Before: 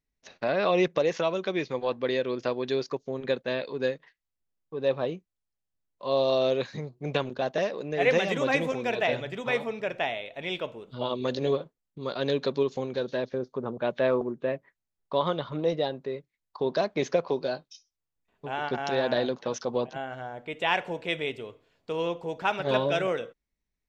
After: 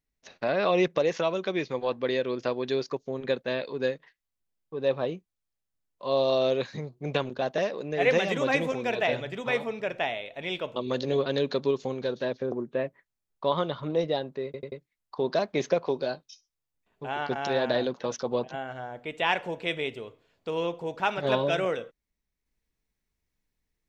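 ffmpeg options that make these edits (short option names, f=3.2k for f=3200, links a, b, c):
-filter_complex "[0:a]asplit=7[a][b][c][d][e][f][g];[a]atrim=end=10.762[h];[b]atrim=start=11.098:end=11.602[i];[c]atrim=start=12.178:end=13.442[j];[d]atrim=start=14.208:end=16.232[k];[e]atrim=start=16.138:end=16.232[l];[f]atrim=start=16.138:end=16.232[m];[g]atrim=start=16.138[n];[h][i]acrossfade=d=0.004:c1=hsin:c2=hsin[o];[o][j]acrossfade=d=0.004:c1=hsin:c2=hsin[p];[p][k]acrossfade=d=0.004:c1=hsin:c2=hsin[q];[q][l]acrossfade=d=0.004:c1=hsin:c2=hsin[r];[r][m]acrossfade=d=0.004:c1=hsin:c2=hsin[s];[s][n]acrossfade=d=0.004:c1=hsin:c2=hsin"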